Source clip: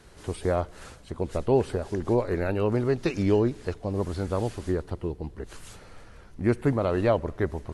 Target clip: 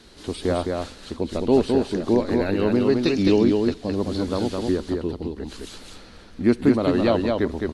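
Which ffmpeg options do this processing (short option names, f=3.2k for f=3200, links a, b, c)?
-af "equalizer=f=125:t=o:w=1:g=-6,equalizer=f=250:t=o:w=1:g=10,equalizer=f=4k:t=o:w=1:g=12,aecho=1:1:212:0.668"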